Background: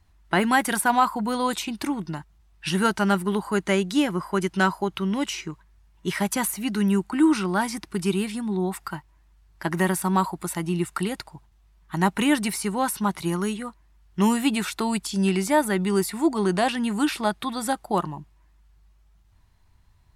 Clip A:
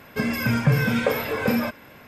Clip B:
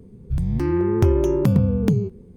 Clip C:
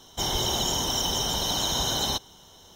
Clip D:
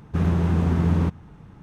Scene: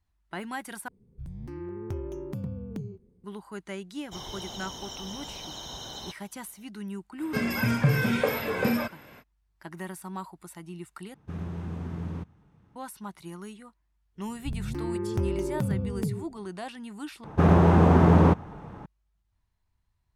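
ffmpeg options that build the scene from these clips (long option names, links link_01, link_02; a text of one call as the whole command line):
ffmpeg -i bed.wav -i cue0.wav -i cue1.wav -i cue2.wav -i cue3.wav -filter_complex "[2:a]asplit=2[link_01][link_02];[4:a]asplit=2[link_03][link_04];[0:a]volume=-15.5dB[link_05];[3:a]acrossover=split=6600[link_06][link_07];[link_07]acompressor=threshold=-43dB:ratio=4:attack=1:release=60[link_08];[link_06][link_08]amix=inputs=2:normalize=0[link_09];[link_03]highpass=53[link_10];[link_04]equalizer=frequency=710:width_type=o:width=2.5:gain=12.5[link_11];[link_05]asplit=4[link_12][link_13][link_14][link_15];[link_12]atrim=end=0.884[link_16];[link_01]atrim=end=2.36,asetpts=PTS-STARTPTS,volume=-17.5dB[link_17];[link_13]atrim=start=3.236:end=11.144[link_18];[link_10]atrim=end=1.62,asetpts=PTS-STARTPTS,volume=-14dB[link_19];[link_14]atrim=start=12.756:end=17.244[link_20];[link_11]atrim=end=1.62,asetpts=PTS-STARTPTS,volume=-0.5dB[link_21];[link_15]atrim=start=18.856[link_22];[link_09]atrim=end=2.75,asetpts=PTS-STARTPTS,volume=-13dB,afade=type=in:duration=0.004:curve=hsin,afade=type=out:start_time=2.746:duration=0.004:curve=hsin,adelay=3940[link_23];[1:a]atrim=end=2.07,asetpts=PTS-STARTPTS,volume=-3.5dB,afade=type=in:duration=0.05,afade=type=out:start_time=2.02:duration=0.05,adelay=7170[link_24];[link_02]atrim=end=2.36,asetpts=PTS-STARTPTS,volume=-11dB,afade=type=in:duration=0.05,afade=type=out:start_time=2.31:duration=0.05,adelay=14150[link_25];[link_16][link_17]acrossfade=duration=0.004:curve1=hsin:curve2=hsin[link_26];[link_26][link_18]acrossfade=duration=0.004:curve1=hsin:curve2=hsin[link_27];[link_27][link_19]acrossfade=duration=0.004:curve1=hsin:curve2=hsin[link_28];[link_28][link_20]acrossfade=duration=0.004:curve1=hsin:curve2=hsin[link_29];[link_29][link_21]acrossfade=duration=0.004:curve1=hsin:curve2=hsin[link_30];[link_30][link_22]acrossfade=duration=0.004:curve1=hsin:curve2=hsin[link_31];[link_31][link_23][link_24][link_25]amix=inputs=4:normalize=0" out.wav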